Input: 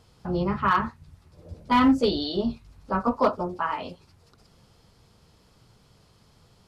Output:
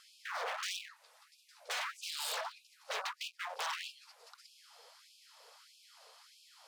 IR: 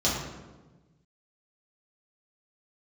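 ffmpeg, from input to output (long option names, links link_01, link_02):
-filter_complex "[0:a]acrossover=split=130[link_01][link_02];[link_02]acompressor=threshold=-30dB:ratio=8[link_03];[link_01][link_03]amix=inputs=2:normalize=0,aeval=exprs='0.0158*(abs(mod(val(0)/0.0158+3,4)-2)-1)':channel_layout=same,afftfilt=real='re*gte(b*sr/1024,420*pow(2400/420,0.5+0.5*sin(2*PI*1.6*pts/sr)))':imag='im*gte(b*sr/1024,420*pow(2400/420,0.5+0.5*sin(2*PI*1.6*pts/sr)))':win_size=1024:overlap=0.75,volume=4.5dB"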